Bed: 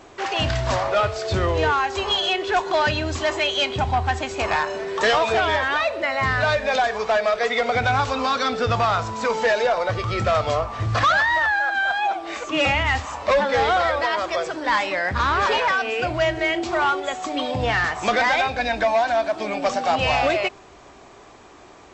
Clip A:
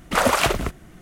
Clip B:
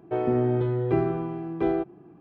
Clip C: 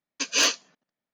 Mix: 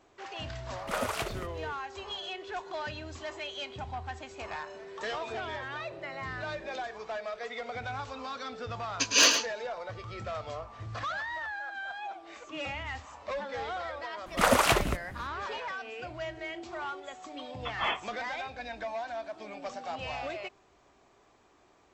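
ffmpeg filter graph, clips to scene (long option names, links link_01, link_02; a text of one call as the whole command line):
ffmpeg -i bed.wav -i cue0.wav -i cue1.wav -i cue2.wav -filter_complex "[1:a]asplit=2[link_01][link_02];[3:a]asplit=2[link_03][link_04];[0:a]volume=-17dB[link_05];[2:a]acompressor=threshold=-32dB:ratio=6:attack=3.2:release=140:knee=1:detection=peak[link_06];[link_03]aecho=1:1:107:0.422[link_07];[link_04]lowpass=frequency=3100:width_type=q:width=0.5098,lowpass=frequency=3100:width_type=q:width=0.6013,lowpass=frequency=3100:width_type=q:width=0.9,lowpass=frequency=3100:width_type=q:width=2.563,afreqshift=-3700[link_08];[link_01]atrim=end=1.01,asetpts=PTS-STARTPTS,volume=-14.5dB,afade=type=in:duration=0.004:curve=hsin,afade=type=out:start_time=1.006:duration=0.004:curve=hsin,adelay=760[link_09];[link_06]atrim=end=2.2,asetpts=PTS-STARTPTS,volume=-15dB,afade=type=in:duration=0.004:curve=hsin,afade=type=out:start_time=2.196:duration=0.004:curve=hsin,adelay=5000[link_10];[link_07]atrim=end=1.13,asetpts=PTS-STARTPTS,afade=type=in:duration=0.004:curve=hsin,afade=type=out:start_time=1.126:duration=0.004:curve=hsin,adelay=8800[link_11];[link_02]atrim=end=1.01,asetpts=PTS-STARTPTS,volume=-4.5dB,afade=type=in:duration=0.004:curve=hsin,afade=type=out:start_time=1.006:duration=0.004:curve=hsin,adelay=14260[link_12];[link_08]atrim=end=1.13,asetpts=PTS-STARTPTS,volume=-5.5dB,afade=type=in:duration=0.004:curve=hsin,afade=type=out:start_time=1.126:duration=0.004:curve=hsin,adelay=17450[link_13];[link_05][link_09][link_10][link_11][link_12][link_13]amix=inputs=6:normalize=0" out.wav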